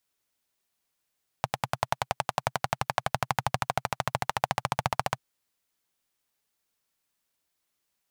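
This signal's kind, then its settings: single-cylinder engine model, changing speed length 3.74 s, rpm 1200, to 1800, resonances 130/780 Hz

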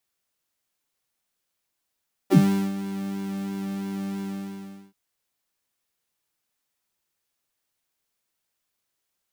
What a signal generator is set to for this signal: synth patch with pulse-width modulation G3, oscillator 2 triangle, interval +7 st, oscillator 2 level -3.5 dB, sub -15 dB, noise -14 dB, filter highpass, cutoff 140 Hz, Q 9.8, filter envelope 2 oct, filter decay 0.07 s, filter sustain 5%, attack 22 ms, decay 0.40 s, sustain -13 dB, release 0.72 s, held 1.91 s, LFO 3 Hz, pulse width 36%, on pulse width 5%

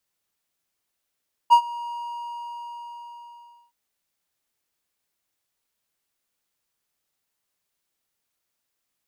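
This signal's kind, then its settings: ADSR triangle 949 Hz, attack 28 ms, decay 81 ms, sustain -21.5 dB, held 0.40 s, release 1820 ms -6 dBFS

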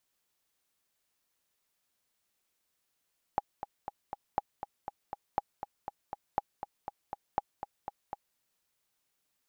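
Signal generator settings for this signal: metronome 240 bpm, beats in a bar 4, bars 5, 816 Hz, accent 10 dB -14.5 dBFS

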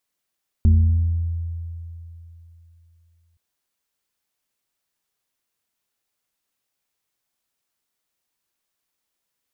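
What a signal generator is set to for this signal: FM tone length 2.72 s, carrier 84 Hz, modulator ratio 1.62, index 0.56, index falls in 1.61 s exponential, decay 3.16 s, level -9.5 dB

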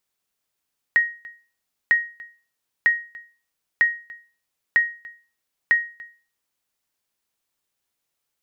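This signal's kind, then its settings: sonar ping 1.88 kHz, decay 0.37 s, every 0.95 s, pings 6, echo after 0.29 s, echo -22.5 dB -9.5 dBFS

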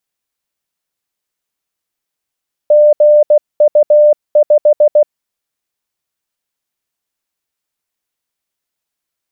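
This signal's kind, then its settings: Morse "GU5" 16 wpm 597 Hz -3.5 dBFS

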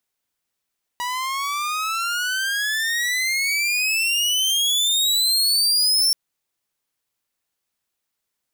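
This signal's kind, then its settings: gliding synth tone saw, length 5.13 s, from 966 Hz, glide +30 st, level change +9.5 dB, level -11.5 dB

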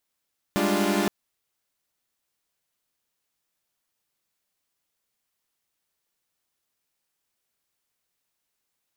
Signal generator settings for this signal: chord G3/G#3/D4/F4 saw, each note -24.5 dBFS 0.52 s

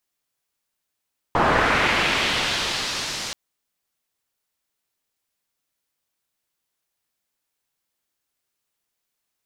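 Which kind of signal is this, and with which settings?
swept filtered noise white, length 1.98 s lowpass, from 900 Hz, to 5.6 kHz, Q 1.3, linear, gain ramp -20 dB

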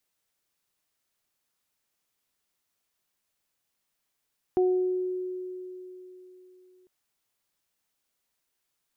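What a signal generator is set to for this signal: additive tone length 2.30 s, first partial 367 Hz, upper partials -11 dB, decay 3.58 s, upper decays 0.71 s, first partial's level -19 dB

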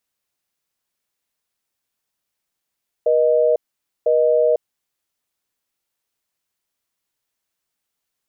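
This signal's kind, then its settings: call progress tone busy tone, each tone -15.5 dBFS 1.70 s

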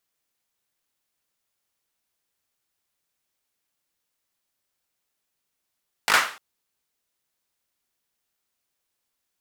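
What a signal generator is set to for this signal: hand clap length 0.30 s, apart 19 ms, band 1.4 kHz, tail 0.41 s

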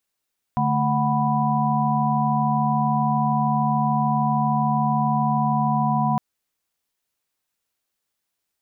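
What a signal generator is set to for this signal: chord D3/A3/F#5/B5 sine, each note -23.5 dBFS 5.61 s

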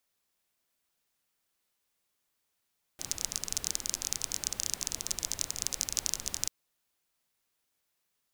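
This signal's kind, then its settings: rain from filtered ticks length 3.49 s, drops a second 24, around 6.2 kHz, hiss -11 dB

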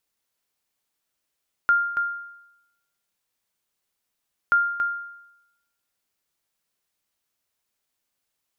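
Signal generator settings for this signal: sonar ping 1.4 kHz, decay 0.87 s, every 2.83 s, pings 2, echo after 0.28 s, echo -7.5 dB -12.5 dBFS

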